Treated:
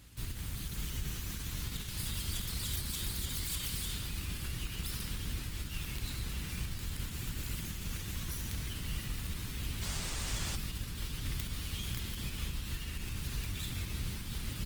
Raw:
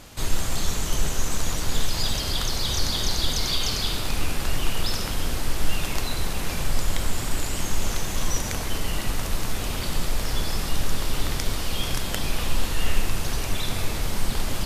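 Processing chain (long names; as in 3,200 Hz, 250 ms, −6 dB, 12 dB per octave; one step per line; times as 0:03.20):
phase distortion by the signal itself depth 0.48 ms
parametric band 6,200 Hz −5 dB 1.1 octaves
brickwall limiter −15.5 dBFS, peak gain reduction 8 dB
high-pass filter 47 Hz 12 dB per octave
guitar amp tone stack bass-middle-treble 6-0-2
repeating echo 694 ms, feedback 41%, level −13 dB
sound drawn into the spectrogram noise, 0:09.82–0:10.56, 270–9,200 Hz −50 dBFS
level +8 dB
Opus 20 kbit/s 48,000 Hz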